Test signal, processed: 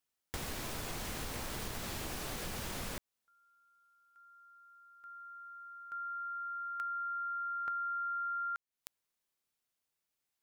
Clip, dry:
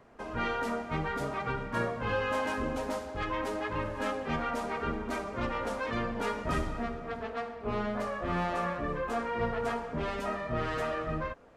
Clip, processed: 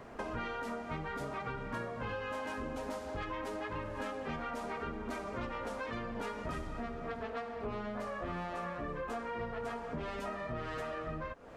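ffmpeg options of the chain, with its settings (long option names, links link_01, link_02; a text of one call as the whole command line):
ffmpeg -i in.wav -af "acompressor=threshold=-45dB:ratio=8,volume=8dB" out.wav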